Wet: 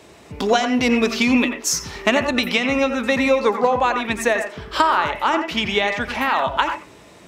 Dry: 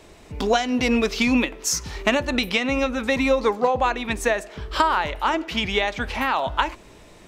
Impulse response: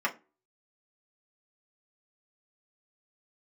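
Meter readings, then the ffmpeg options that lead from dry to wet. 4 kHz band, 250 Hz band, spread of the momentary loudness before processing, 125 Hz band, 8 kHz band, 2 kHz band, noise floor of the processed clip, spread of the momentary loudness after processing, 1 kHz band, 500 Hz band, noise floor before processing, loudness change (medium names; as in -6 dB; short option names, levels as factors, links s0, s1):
+2.5 dB, +3.0 dB, 5 LU, -0.5 dB, +2.5 dB, +3.5 dB, -46 dBFS, 5 LU, +3.5 dB, +3.0 dB, -48 dBFS, +3.0 dB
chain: -filter_complex "[0:a]highpass=92,asplit=2[s0][s1];[1:a]atrim=start_sample=2205,adelay=85[s2];[s1][s2]afir=irnorm=-1:irlink=0,volume=0.158[s3];[s0][s3]amix=inputs=2:normalize=0,volume=1.33"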